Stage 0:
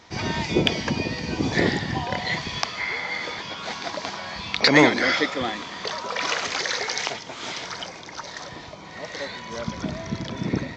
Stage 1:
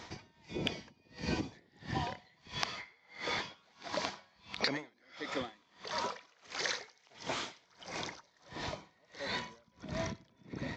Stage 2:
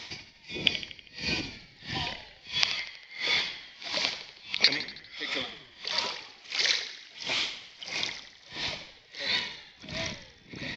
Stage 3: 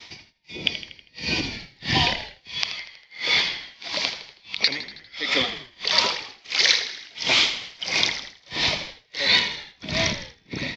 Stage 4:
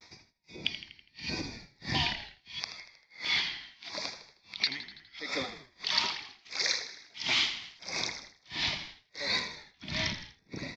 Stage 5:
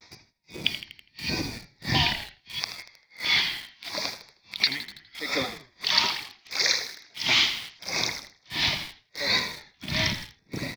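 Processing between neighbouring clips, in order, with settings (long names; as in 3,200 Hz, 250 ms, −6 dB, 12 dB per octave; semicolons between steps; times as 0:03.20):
downward compressor 12 to 1, threshold −31 dBFS, peak gain reduction 21 dB; tremolo with a sine in dB 1.5 Hz, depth 35 dB; level +2 dB
flat-topped bell 3,400 Hz +13.5 dB; on a send: echo with shifted repeats 80 ms, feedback 57%, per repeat −45 Hz, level −12 dB; on the sum: level −1 dB
downward expander −45 dBFS; automatic gain control gain up to 14 dB; level −1 dB
pitch vibrato 0.77 Hz 52 cents; auto-filter notch square 0.77 Hz 510–3,000 Hz; level −8.5 dB
parametric band 120 Hz +3 dB 0.48 octaves; in parallel at −5 dB: bit reduction 7 bits; on the sum: level +2.5 dB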